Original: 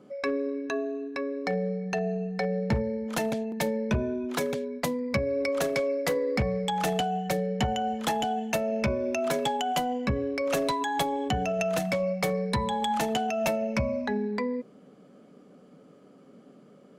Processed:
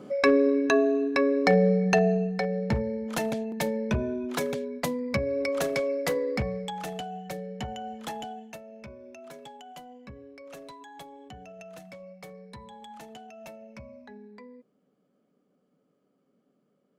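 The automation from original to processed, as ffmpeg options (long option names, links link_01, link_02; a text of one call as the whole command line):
ffmpeg -i in.wav -af "volume=8.5dB,afade=type=out:start_time=1.9:duration=0.56:silence=0.354813,afade=type=out:start_time=6.19:duration=0.64:silence=0.398107,afade=type=out:start_time=8.19:duration=0.43:silence=0.334965" out.wav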